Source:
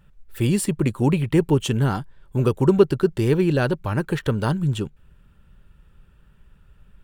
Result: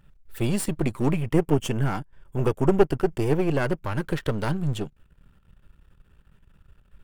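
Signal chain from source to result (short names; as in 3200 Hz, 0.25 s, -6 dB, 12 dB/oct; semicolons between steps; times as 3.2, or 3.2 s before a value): half-wave gain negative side -12 dB; 1.12–3.84 bell 4000 Hz -12.5 dB 0.25 oct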